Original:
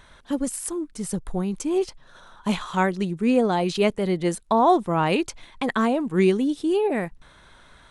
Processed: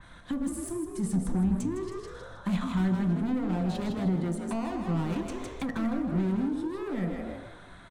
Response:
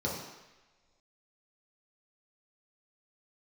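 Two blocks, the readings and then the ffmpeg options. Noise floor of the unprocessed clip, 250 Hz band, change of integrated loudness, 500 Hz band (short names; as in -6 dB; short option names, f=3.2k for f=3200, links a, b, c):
-53 dBFS, -4.0 dB, -7.0 dB, -13.5 dB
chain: -filter_complex "[0:a]volume=26dB,asoftclip=hard,volume=-26dB,asplit=5[a][b][c][d][e];[b]adelay=158,afreqshift=50,volume=-6dB[f];[c]adelay=316,afreqshift=100,volume=-15.1dB[g];[d]adelay=474,afreqshift=150,volume=-24.2dB[h];[e]adelay=632,afreqshift=200,volume=-33.4dB[i];[a][f][g][h][i]amix=inputs=5:normalize=0,asplit=2[j][k];[1:a]atrim=start_sample=2205,asetrate=57330,aresample=44100[l];[k][l]afir=irnorm=-1:irlink=0,volume=-10.5dB[m];[j][m]amix=inputs=2:normalize=0,acrossover=split=220[n][o];[o]acompressor=threshold=-34dB:ratio=6[p];[n][p]amix=inputs=2:normalize=0,adynamicequalizer=threshold=0.00141:dfrequency=3000:dqfactor=0.7:tfrequency=3000:tqfactor=0.7:attack=5:release=100:ratio=0.375:range=2:mode=cutabove:tftype=highshelf"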